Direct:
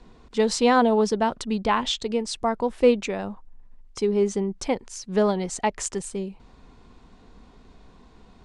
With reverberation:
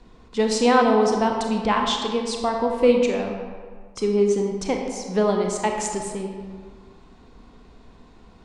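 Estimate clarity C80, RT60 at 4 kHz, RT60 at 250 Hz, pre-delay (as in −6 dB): 5.0 dB, 1.0 s, 1.6 s, 25 ms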